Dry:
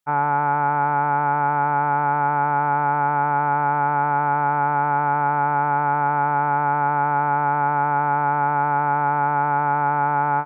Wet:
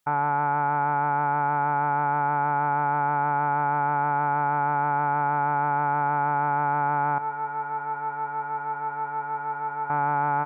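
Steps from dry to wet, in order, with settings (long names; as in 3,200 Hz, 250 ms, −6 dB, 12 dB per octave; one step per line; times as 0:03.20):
brickwall limiter −21 dBFS, peak gain reduction 11.5 dB
0:07.18–0:09.90: tuned comb filter 110 Hz, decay 0.28 s, harmonics all, mix 90%
level +6.5 dB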